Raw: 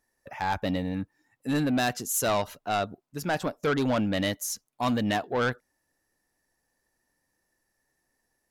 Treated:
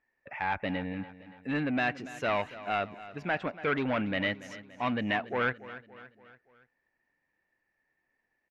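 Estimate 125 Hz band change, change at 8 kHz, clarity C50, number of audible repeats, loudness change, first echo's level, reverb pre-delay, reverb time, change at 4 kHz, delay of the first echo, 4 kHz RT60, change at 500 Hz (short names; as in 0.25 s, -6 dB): -6.5 dB, under -20 dB, none, 4, -3.5 dB, -16.0 dB, none, none, -6.0 dB, 0.285 s, none, -4.0 dB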